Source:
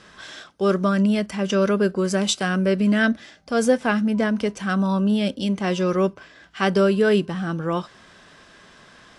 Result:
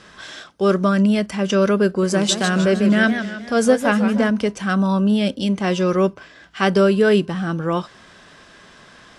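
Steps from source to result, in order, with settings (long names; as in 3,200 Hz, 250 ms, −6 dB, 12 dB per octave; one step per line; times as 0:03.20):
0:01.87–0:04.30: feedback echo with a swinging delay time 155 ms, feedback 49%, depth 211 cents, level −9 dB
level +3 dB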